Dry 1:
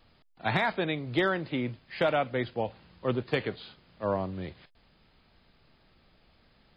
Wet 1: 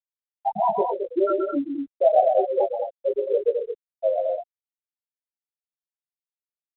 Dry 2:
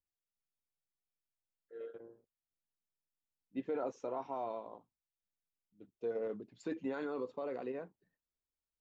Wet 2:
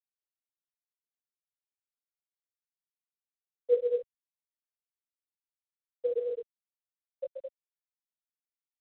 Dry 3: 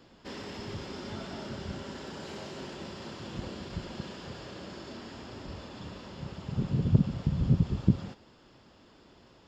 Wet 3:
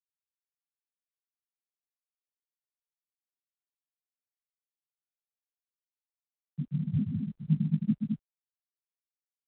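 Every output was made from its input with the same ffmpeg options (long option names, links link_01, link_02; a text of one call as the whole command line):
ffmpeg -i in.wav -filter_complex "[0:a]aresample=8000,asoftclip=type=tanh:threshold=-22.5dB,aresample=44100,equalizer=frequency=620:width=0.41:gain=13,afftfilt=real='re*gte(hypot(re,im),0.708)':imag='im*gte(hypot(re,im),0.708)':win_size=1024:overlap=0.75,asplit=2[link_01][link_02];[link_02]alimiter=limit=-20dB:level=0:latency=1:release=243,volume=-1.5dB[link_03];[link_01][link_03]amix=inputs=2:normalize=0,aecho=1:1:131.2|215.7:0.501|0.562,afreqshift=24,flanger=delay=18.5:depth=2.8:speed=0.25,highshelf=frequency=2600:gain=10" -ar 8000 -c:a pcm_mulaw out.wav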